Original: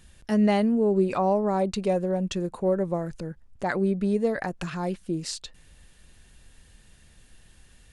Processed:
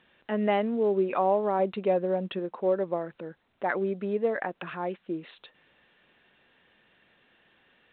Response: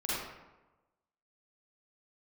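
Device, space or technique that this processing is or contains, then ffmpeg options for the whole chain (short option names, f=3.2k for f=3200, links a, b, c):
telephone: -filter_complex "[0:a]asettb=1/sr,asplit=3[a][b][c];[a]atrim=end=1.594[d];[b]atrim=start=1.59:end=2.39,asetpts=PTS-STARTPTS,afade=t=in:d=0.004:c=qsin,afade=t=out:st=0.796:d=0.004:c=qsin,lowshelf=f=250:g=5.5[e];[c]atrim=start=2.386[f];[d][e]acrossfade=d=0.004:c1=hsin:c2=qsin[g];[g][f]acrossfade=d=0.004:c1=qsin:c2=hsin,highpass=330,lowpass=3.1k" -ar 8000 -c:a pcm_alaw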